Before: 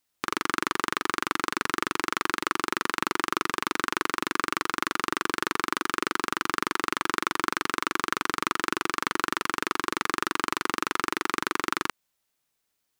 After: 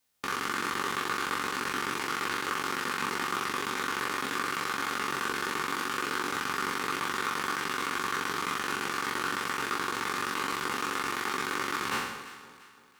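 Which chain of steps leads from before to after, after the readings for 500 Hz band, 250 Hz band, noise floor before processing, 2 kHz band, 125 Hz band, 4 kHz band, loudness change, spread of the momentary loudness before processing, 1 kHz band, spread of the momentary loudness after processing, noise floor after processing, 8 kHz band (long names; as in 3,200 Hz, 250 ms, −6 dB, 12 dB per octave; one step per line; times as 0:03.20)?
−3.0 dB, −5.0 dB, −78 dBFS, −2.5 dB, −1.0 dB, −2.0 dB, −2.5 dB, 1 LU, −2.5 dB, 1 LU, −52 dBFS, −2.0 dB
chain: peak hold with a decay on every bin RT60 0.94 s
brickwall limiter −13.5 dBFS, peak gain reduction 10.5 dB
notch comb filter 330 Hz
delay that swaps between a low-pass and a high-pass 171 ms, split 950 Hz, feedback 64%, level −11 dB
level +1.5 dB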